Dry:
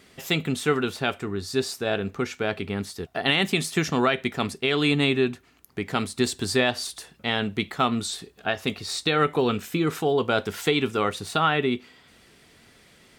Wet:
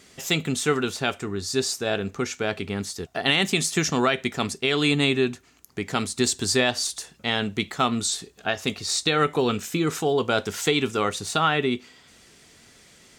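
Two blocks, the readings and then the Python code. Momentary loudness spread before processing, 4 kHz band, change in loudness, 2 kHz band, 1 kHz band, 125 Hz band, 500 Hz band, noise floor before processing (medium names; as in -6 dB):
9 LU, +2.5 dB, +1.0 dB, +0.5 dB, 0.0 dB, 0.0 dB, 0.0 dB, -56 dBFS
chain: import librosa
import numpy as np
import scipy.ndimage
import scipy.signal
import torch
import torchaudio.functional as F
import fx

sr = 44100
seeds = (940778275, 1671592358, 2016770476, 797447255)

y = fx.peak_eq(x, sr, hz=6700.0, db=9.5, octaves=0.9)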